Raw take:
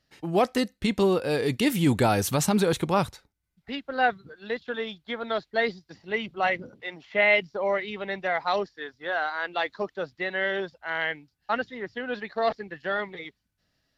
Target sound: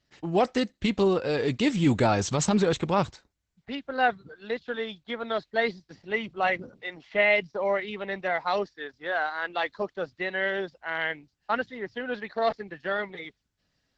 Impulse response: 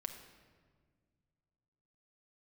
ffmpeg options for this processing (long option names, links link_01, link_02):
-filter_complex "[0:a]asplit=3[link_01][link_02][link_03];[link_01]afade=type=out:start_time=6.71:duration=0.02[link_04];[link_02]adynamicequalizer=threshold=0.0224:dfrequency=1700:dqfactor=0.74:tfrequency=1700:tqfactor=0.74:attack=5:release=100:ratio=0.375:range=3.5:mode=cutabove:tftype=bell,afade=type=in:start_time=6.71:duration=0.02,afade=type=out:start_time=7.37:duration=0.02[link_05];[link_03]afade=type=in:start_time=7.37:duration=0.02[link_06];[link_04][link_05][link_06]amix=inputs=3:normalize=0" -ar 48000 -c:a libopus -b:a 12k